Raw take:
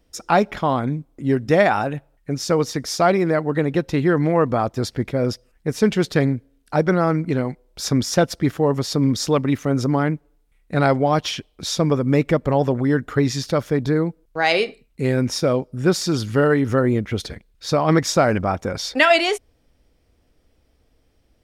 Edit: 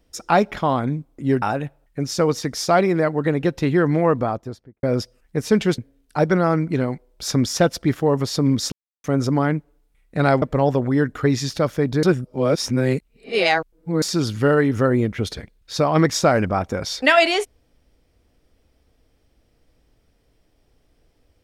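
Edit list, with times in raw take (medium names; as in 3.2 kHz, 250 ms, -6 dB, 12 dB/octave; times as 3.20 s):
1.42–1.73 s: delete
4.34–5.14 s: studio fade out
6.09–6.35 s: delete
9.29–9.61 s: mute
10.99–12.35 s: delete
13.96–15.95 s: reverse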